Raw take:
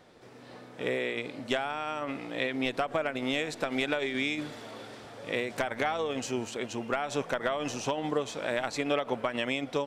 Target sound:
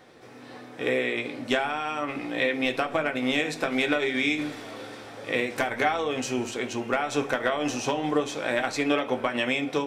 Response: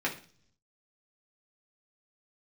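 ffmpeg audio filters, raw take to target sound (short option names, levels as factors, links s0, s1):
-filter_complex "[0:a]asplit=2[s0][s1];[1:a]atrim=start_sample=2205,highshelf=f=5400:g=10.5[s2];[s1][s2]afir=irnorm=-1:irlink=0,volume=0.398[s3];[s0][s3]amix=inputs=2:normalize=0"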